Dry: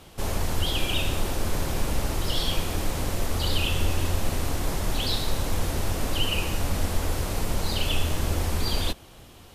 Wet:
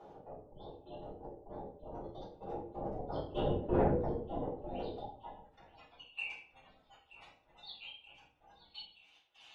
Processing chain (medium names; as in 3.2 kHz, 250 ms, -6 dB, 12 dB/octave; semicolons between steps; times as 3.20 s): Doppler pass-by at 3.72 s, 28 m/s, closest 3.8 m; de-hum 96.12 Hz, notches 10; spectral gate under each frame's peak -25 dB strong; graphic EQ with 31 bands 400 Hz -4 dB, 800 Hz +11 dB, 6.3 kHz +9 dB; in parallel at +3 dB: upward compressor, threshold -40 dBFS; on the sum: overload inside the chain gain 15 dB; band-pass sweep 450 Hz -> 3.1 kHz, 4.88–5.68 s; saturation -30 dBFS, distortion -17 dB; trance gate "xx.x..xx..x" 175 bpm -24 dB; feedback echo behind a high-pass 927 ms, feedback 69%, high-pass 2.4 kHz, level -16 dB; simulated room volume 56 m³, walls mixed, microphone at 3.2 m; trim -4.5 dB